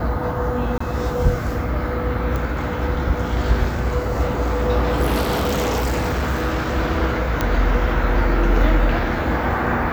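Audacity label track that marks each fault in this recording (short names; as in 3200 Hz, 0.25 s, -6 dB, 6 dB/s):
0.780000	0.800000	gap 24 ms
2.360000	2.360000	pop
5.210000	6.760000	clipped -16.5 dBFS
7.410000	7.410000	pop -5 dBFS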